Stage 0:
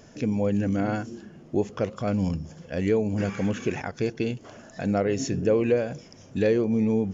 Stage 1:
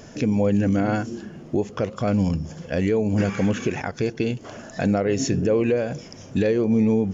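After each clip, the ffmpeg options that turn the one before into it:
-af "alimiter=limit=-19.5dB:level=0:latency=1:release=331,volume=7.5dB"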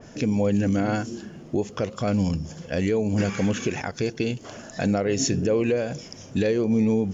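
-af "adynamicequalizer=threshold=0.00562:dfrequency=2900:dqfactor=0.7:tfrequency=2900:tqfactor=0.7:attack=5:release=100:ratio=0.375:range=3:mode=boostabove:tftype=highshelf,volume=-2dB"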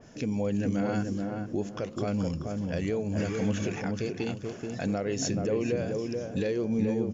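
-filter_complex "[0:a]asplit=2[a][b];[b]adelay=431,lowpass=f=1.1k:p=1,volume=-3dB,asplit=2[c][d];[d]adelay=431,lowpass=f=1.1k:p=1,volume=0.34,asplit=2[e][f];[f]adelay=431,lowpass=f=1.1k:p=1,volume=0.34,asplit=2[g][h];[h]adelay=431,lowpass=f=1.1k:p=1,volume=0.34[i];[a][c][e][g][i]amix=inputs=5:normalize=0,volume=-7dB"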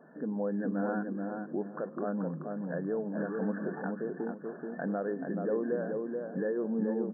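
-af "lowshelf=f=420:g=-5,afftfilt=real='re*between(b*sr/4096,150,1800)':imag='im*between(b*sr/4096,150,1800)':win_size=4096:overlap=0.75"

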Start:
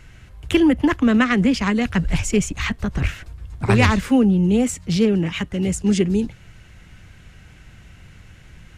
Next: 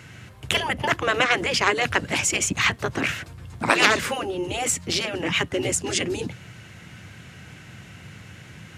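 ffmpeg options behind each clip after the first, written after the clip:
-af "afftfilt=real='re*lt(hypot(re,im),0.447)':imag='im*lt(hypot(re,im),0.447)':win_size=1024:overlap=0.75,highpass=f=98:w=0.5412,highpass=f=98:w=1.3066,volume=5.5dB"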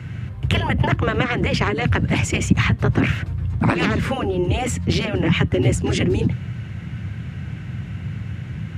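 -filter_complex "[0:a]bass=f=250:g=14,treble=f=4k:g=-11,acrossover=split=330[a][b];[b]acompressor=threshold=-22dB:ratio=10[c];[a][c]amix=inputs=2:normalize=0,volume=3dB"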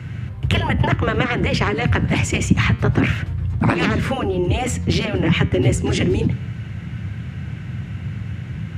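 -af "flanger=delay=8.1:depth=6.5:regen=-89:speed=0.26:shape=triangular,volume=5.5dB"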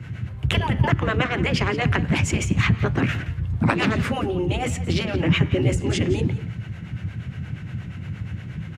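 -filter_complex "[0:a]acrossover=split=400[a][b];[a]aeval=exprs='val(0)*(1-0.7/2+0.7/2*cos(2*PI*8.5*n/s))':c=same[c];[b]aeval=exprs='val(0)*(1-0.7/2-0.7/2*cos(2*PI*8.5*n/s))':c=same[d];[c][d]amix=inputs=2:normalize=0,aecho=1:1:173:0.168"

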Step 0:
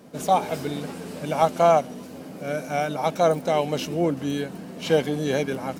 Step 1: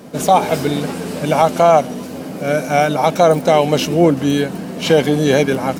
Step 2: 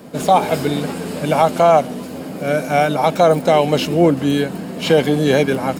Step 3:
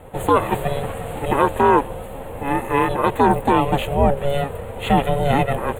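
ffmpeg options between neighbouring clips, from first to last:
-af "alimiter=level_in=12dB:limit=-1dB:release=50:level=0:latency=1,volume=-1dB"
-filter_complex "[0:a]bandreject=f=5.9k:w=9.2,acrossover=split=730|6000[a][b][c];[c]asoftclip=type=hard:threshold=-32dB[d];[a][b][d]amix=inputs=3:normalize=0,volume=-1dB"
-af "aeval=exprs='val(0)*sin(2*PI*280*n/s)':c=same,asuperstop=centerf=5300:order=4:qfactor=1.1"

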